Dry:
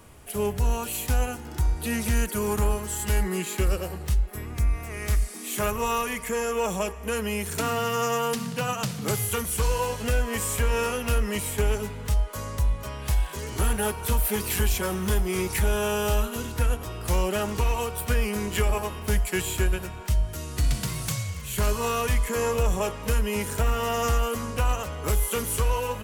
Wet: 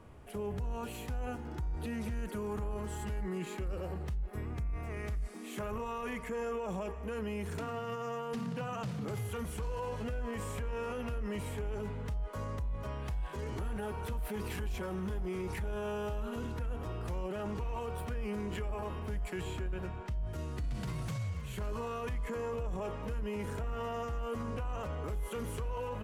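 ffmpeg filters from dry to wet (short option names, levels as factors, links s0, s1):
-filter_complex "[0:a]asettb=1/sr,asplit=3[s0][s1][s2];[s0]atrim=end=19.434[s3];[s1]atrim=start=19.43:end=20.27,asetpts=PTS-STARTPTS,afade=t=in:d=0.004:c=qsin,afade=t=out:st=0.836:d=0.004:c=qsin,highshelf=f=9200:g=-9[s4];[s2]atrim=start=20.266[s5];[s3][s4]acrossfade=d=0.004:c1=hsin:c2=qsin[s6];[s6][s5]acrossfade=d=0.004:c1=qsin:c2=hsin,lowpass=f=1200:p=1,alimiter=level_in=1.5:limit=0.0631:level=0:latency=1:release=14,volume=0.668,volume=0.708"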